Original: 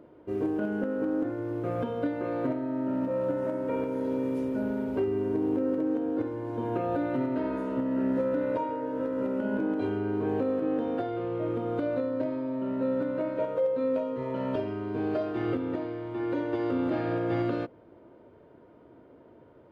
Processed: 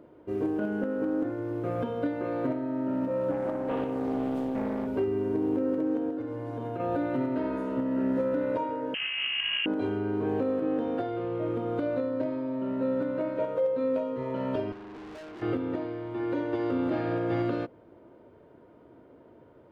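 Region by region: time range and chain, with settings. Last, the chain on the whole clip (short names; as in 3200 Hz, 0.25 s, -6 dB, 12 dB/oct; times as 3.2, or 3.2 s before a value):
3.31–4.87 HPF 47 Hz + Doppler distortion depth 0.56 ms
6.1–6.8 notches 50/100/150/200/250/300/350 Hz + comb 7 ms, depth 42% + compressor 5:1, threshold -30 dBFS
8.94–9.66 minimum comb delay 0.57 ms + notch 1700 Hz, Q 28 + inverted band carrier 3100 Hz
14.72–15.42 bell 110 Hz -12.5 dB 0.4 oct + tube stage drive 42 dB, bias 0.45
whole clip: dry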